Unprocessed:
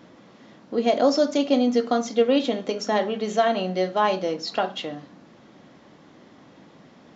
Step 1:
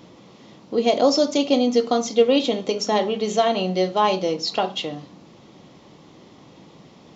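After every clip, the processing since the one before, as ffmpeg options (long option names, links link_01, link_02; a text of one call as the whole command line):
ffmpeg -i in.wav -af "equalizer=frequency=250:width_type=o:width=0.67:gain=-6,equalizer=frequency=630:width_type=o:width=0.67:gain=-5,equalizer=frequency=1600:width_type=o:width=0.67:gain=-12,volume=6.5dB" out.wav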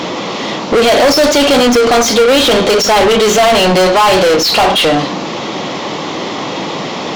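ffmpeg -i in.wav -filter_complex "[0:a]asplit=2[link_01][link_02];[link_02]highpass=frequency=720:poles=1,volume=38dB,asoftclip=type=tanh:threshold=-5dB[link_03];[link_01][link_03]amix=inputs=2:normalize=0,lowpass=frequency=3900:poles=1,volume=-6dB,volume=3dB" out.wav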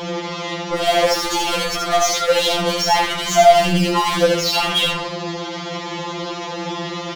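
ffmpeg -i in.wav -filter_complex "[0:a]asplit=2[link_01][link_02];[link_02]aecho=0:1:78:0.668[link_03];[link_01][link_03]amix=inputs=2:normalize=0,afftfilt=real='re*2.83*eq(mod(b,8),0)':imag='im*2.83*eq(mod(b,8),0)':win_size=2048:overlap=0.75,volume=-6.5dB" out.wav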